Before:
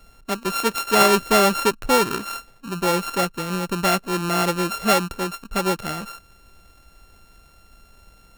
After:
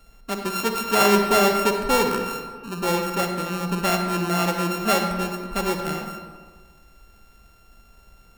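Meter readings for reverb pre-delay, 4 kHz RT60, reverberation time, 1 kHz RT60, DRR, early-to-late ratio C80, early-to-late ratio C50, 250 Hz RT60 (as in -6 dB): 40 ms, 0.90 s, 1.5 s, 1.5 s, 4.0 dB, 6.5 dB, 4.5 dB, 1.7 s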